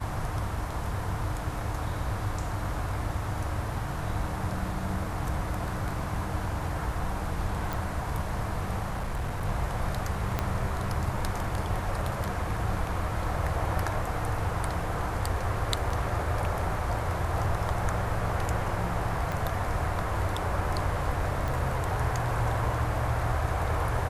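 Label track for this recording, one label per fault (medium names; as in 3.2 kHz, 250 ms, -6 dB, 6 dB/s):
7.730000	7.730000	pop
8.890000	9.450000	clipped -27 dBFS
10.390000	10.390000	pop -13 dBFS
15.900000	15.900000	dropout 4 ms
19.320000	19.320000	pop
21.480000	21.480000	pop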